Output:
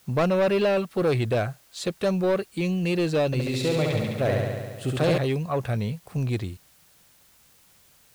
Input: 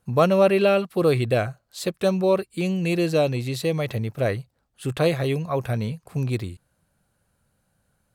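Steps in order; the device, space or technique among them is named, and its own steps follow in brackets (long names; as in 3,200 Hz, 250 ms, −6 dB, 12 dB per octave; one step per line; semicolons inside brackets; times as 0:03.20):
compact cassette (soft clipping −17 dBFS, distortion −13 dB; low-pass filter 8,700 Hz; tape wow and flutter; white noise bed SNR 32 dB)
0:03.26–0:05.18: flutter between parallel walls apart 11.9 metres, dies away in 1.5 s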